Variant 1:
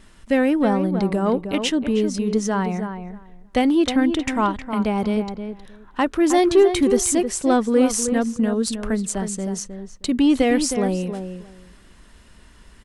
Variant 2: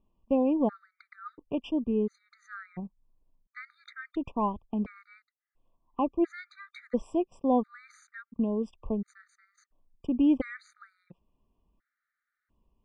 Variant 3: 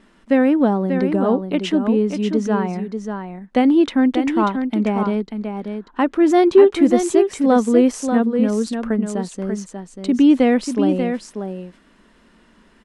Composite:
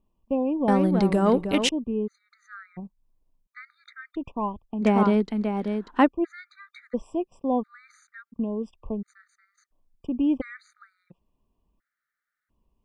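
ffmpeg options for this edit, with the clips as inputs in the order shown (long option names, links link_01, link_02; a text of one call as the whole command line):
ffmpeg -i take0.wav -i take1.wav -i take2.wav -filter_complex "[1:a]asplit=3[link_01][link_02][link_03];[link_01]atrim=end=0.682[link_04];[0:a]atrim=start=0.678:end=1.692[link_05];[link_02]atrim=start=1.688:end=4.85[link_06];[2:a]atrim=start=4.81:end=6.09[link_07];[link_03]atrim=start=6.05[link_08];[link_04][link_05]acrossfade=duration=0.004:curve1=hsin:curve2=hsin[link_09];[link_09][link_06]acrossfade=duration=0.004:curve1=hsin:curve2=hsin[link_10];[link_10][link_07]acrossfade=duration=0.04:curve1=tri:curve2=tri[link_11];[link_11][link_08]acrossfade=duration=0.04:curve1=tri:curve2=tri" out.wav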